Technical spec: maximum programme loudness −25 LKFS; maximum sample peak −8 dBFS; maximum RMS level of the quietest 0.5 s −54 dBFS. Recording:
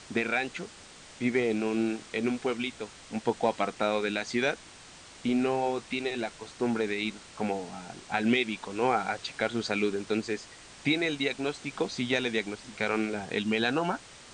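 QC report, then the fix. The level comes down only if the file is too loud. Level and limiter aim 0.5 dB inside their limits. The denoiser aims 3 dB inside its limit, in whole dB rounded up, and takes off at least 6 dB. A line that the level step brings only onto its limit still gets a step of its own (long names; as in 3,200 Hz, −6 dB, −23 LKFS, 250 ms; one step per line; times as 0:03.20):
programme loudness −30.0 LKFS: in spec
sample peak −12.0 dBFS: in spec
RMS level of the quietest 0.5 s −50 dBFS: out of spec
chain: broadband denoise 7 dB, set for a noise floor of −50 dBFS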